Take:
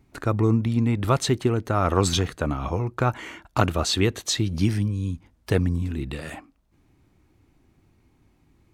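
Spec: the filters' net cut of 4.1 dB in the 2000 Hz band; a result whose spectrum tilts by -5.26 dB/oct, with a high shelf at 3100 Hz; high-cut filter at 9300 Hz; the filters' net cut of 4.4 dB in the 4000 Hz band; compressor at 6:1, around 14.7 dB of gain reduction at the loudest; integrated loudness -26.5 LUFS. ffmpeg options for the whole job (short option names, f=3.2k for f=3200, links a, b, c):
-af "lowpass=9.3k,equalizer=f=2k:t=o:g=-5.5,highshelf=f=3.1k:g=4.5,equalizer=f=4k:t=o:g=-7,acompressor=threshold=-32dB:ratio=6,volume=10dB"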